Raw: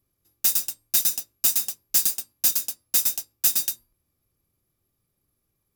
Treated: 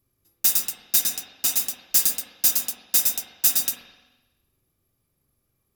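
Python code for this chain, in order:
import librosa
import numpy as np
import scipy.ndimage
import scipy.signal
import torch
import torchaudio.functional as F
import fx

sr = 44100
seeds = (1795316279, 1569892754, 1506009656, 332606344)

y = fx.high_shelf(x, sr, hz=8500.0, db=-5.5, at=(1.0, 1.57))
y = fx.rev_spring(y, sr, rt60_s=1.1, pass_ms=(42, 50), chirp_ms=75, drr_db=3.0)
y = y * 10.0 ** (1.5 / 20.0)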